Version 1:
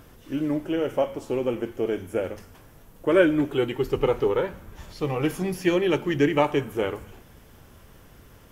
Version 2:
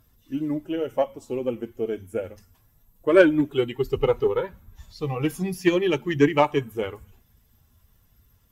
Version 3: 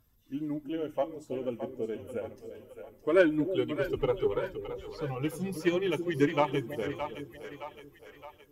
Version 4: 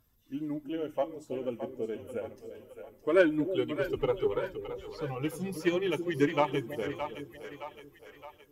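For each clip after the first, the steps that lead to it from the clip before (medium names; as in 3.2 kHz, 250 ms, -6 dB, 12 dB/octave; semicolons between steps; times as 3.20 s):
expander on every frequency bin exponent 1.5; Chebyshev shaper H 7 -30 dB, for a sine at -7 dBFS; trim +4.5 dB
two-band feedback delay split 520 Hz, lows 324 ms, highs 617 ms, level -9 dB; trim -7.5 dB
bass shelf 190 Hz -3 dB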